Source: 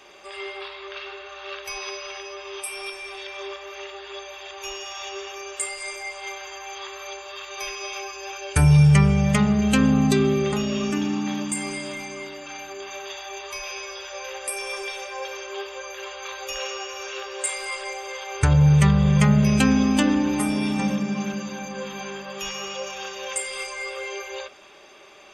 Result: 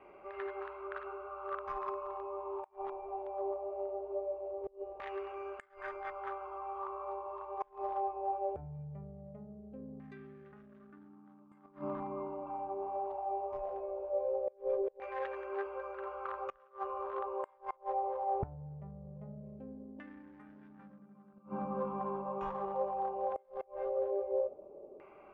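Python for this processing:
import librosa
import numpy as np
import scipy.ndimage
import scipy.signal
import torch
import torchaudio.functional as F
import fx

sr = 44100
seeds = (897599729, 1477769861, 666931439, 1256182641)

y = fx.wiener(x, sr, points=25)
y = fx.gate_flip(y, sr, shuts_db=-23.0, range_db=-28)
y = fx.filter_lfo_lowpass(y, sr, shape='saw_down', hz=0.2, low_hz=490.0, high_hz=1900.0, q=3.8)
y = y * 10.0 ** (-4.0 / 20.0)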